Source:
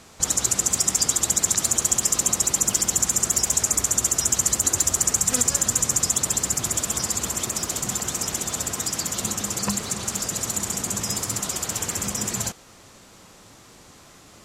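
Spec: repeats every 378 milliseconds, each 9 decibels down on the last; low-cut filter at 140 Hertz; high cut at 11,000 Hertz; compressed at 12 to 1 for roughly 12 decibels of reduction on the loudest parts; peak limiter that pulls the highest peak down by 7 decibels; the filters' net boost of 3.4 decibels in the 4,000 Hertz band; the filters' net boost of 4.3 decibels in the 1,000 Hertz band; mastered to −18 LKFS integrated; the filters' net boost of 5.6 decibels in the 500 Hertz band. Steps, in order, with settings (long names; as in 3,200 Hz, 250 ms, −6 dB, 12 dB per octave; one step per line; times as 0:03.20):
high-pass filter 140 Hz
low-pass filter 11,000 Hz
parametric band 500 Hz +6 dB
parametric band 1,000 Hz +3.5 dB
parametric band 4,000 Hz +4.5 dB
downward compressor 12 to 1, threshold −27 dBFS
brickwall limiter −20.5 dBFS
repeating echo 378 ms, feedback 35%, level −9 dB
level +14.5 dB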